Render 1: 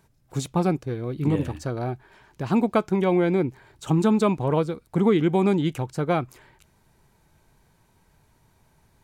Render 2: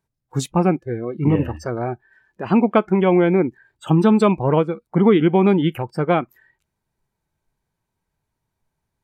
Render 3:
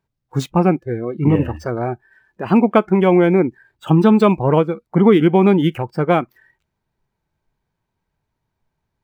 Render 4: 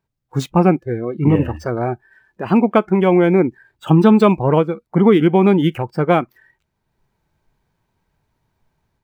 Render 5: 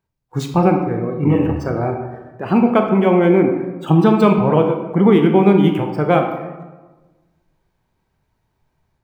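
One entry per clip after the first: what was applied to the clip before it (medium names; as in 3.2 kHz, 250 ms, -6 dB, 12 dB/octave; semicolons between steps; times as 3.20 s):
spectral noise reduction 22 dB; trim +5.5 dB
median filter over 5 samples; trim +2.5 dB
level rider gain up to 8 dB; trim -1 dB
reverberation RT60 1.2 s, pre-delay 18 ms, DRR 3.5 dB; trim -1.5 dB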